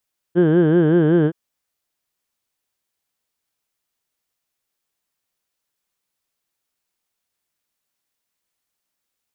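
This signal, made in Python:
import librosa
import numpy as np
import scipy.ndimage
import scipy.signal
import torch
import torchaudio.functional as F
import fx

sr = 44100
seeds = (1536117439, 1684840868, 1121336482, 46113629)

y = fx.formant_vowel(sr, seeds[0], length_s=0.97, hz=166.0, glide_st=-0.5, vibrato_hz=5.3, vibrato_st=1.4, f1_hz=390.0, f2_hz=1600.0, f3_hz=3100.0)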